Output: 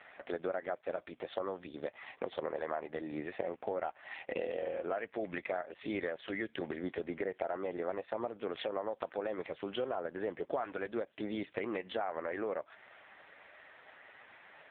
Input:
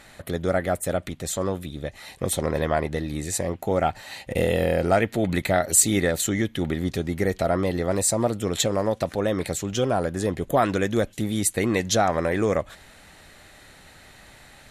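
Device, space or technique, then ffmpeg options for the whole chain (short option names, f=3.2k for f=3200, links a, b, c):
voicemail: -af "highpass=440,lowpass=2.7k,acompressor=threshold=-33dB:ratio=8,volume=1dB" -ar 8000 -c:a libopencore_amrnb -b:a 5150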